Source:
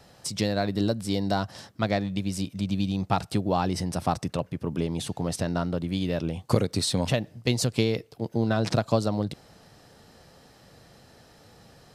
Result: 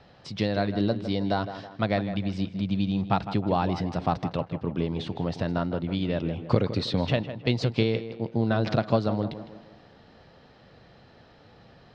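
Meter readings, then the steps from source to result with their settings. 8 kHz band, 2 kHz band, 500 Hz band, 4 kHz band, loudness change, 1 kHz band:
under -15 dB, 0.0 dB, +0.5 dB, -2.5 dB, 0.0 dB, +0.5 dB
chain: low-pass 4.1 kHz 24 dB/octave; on a send: tape echo 159 ms, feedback 49%, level -10 dB, low-pass 2.4 kHz

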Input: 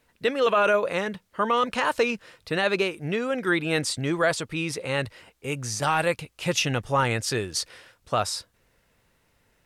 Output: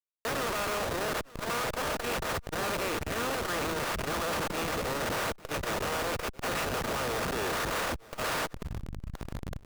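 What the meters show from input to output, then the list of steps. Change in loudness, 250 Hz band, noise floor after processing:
-6.5 dB, -7.0 dB, -52 dBFS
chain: spectral levelling over time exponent 0.2; gate -16 dBFS, range -23 dB; three-band isolator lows -13 dB, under 580 Hz, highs -12 dB, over 3.2 kHz; reverse; compression 16:1, threshold -30 dBFS, peak gain reduction 19 dB; reverse; Schmitt trigger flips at -39.5 dBFS; on a send: delay 884 ms -21.5 dB; on the sum: transformer saturation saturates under 130 Hz; trim +5 dB

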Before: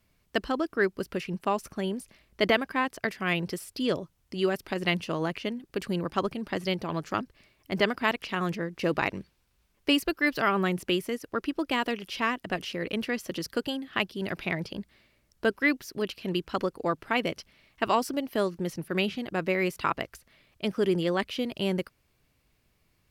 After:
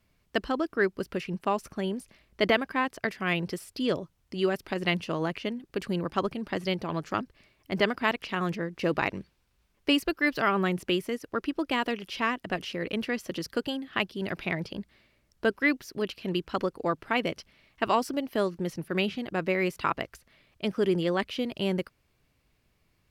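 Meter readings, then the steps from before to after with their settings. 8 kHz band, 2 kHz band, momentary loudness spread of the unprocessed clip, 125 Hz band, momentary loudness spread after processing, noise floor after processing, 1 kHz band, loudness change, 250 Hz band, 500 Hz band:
-2.5 dB, -0.5 dB, 8 LU, 0.0 dB, 8 LU, -71 dBFS, 0.0 dB, 0.0 dB, 0.0 dB, 0.0 dB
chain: treble shelf 6.9 kHz -5 dB

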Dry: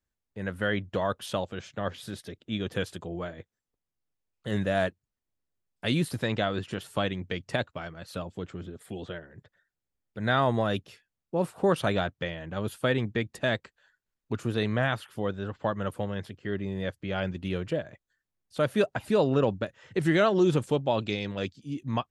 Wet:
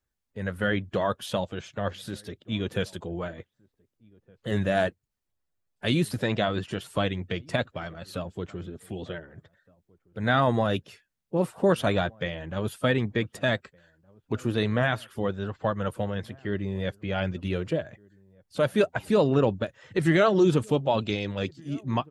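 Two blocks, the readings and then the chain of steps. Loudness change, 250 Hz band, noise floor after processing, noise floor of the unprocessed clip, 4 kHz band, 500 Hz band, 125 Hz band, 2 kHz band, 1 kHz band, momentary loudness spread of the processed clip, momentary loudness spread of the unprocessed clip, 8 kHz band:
+2.0 dB, +2.5 dB, -81 dBFS, under -85 dBFS, +1.5 dB, +2.0 dB, +2.5 dB, +1.5 dB, +2.0 dB, 14 LU, 14 LU, +1.5 dB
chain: coarse spectral quantiser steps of 15 dB; echo from a far wall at 260 m, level -27 dB; trim +2.5 dB

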